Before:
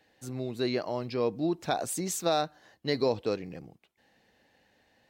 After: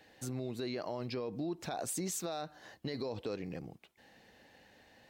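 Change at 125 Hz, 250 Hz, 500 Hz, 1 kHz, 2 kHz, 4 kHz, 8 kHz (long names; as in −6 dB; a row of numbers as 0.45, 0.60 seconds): −4.5, −6.5, −10.0, −10.5, −8.5, −9.0, −4.0 decibels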